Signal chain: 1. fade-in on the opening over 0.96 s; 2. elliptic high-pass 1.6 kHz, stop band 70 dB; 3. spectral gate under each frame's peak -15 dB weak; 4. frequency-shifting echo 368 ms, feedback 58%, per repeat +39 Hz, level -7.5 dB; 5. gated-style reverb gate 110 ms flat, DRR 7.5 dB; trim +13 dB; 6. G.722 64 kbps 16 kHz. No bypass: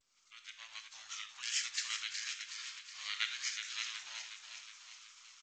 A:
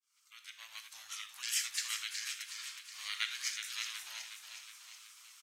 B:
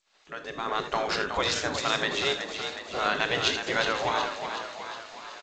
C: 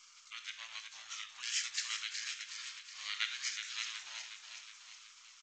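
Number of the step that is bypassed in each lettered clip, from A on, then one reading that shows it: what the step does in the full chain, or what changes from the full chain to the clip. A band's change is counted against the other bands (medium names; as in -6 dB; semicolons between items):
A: 6, 8 kHz band +2.5 dB; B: 2, 1 kHz band +16.0 dB; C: 1, momentary loudness spread change -3 LU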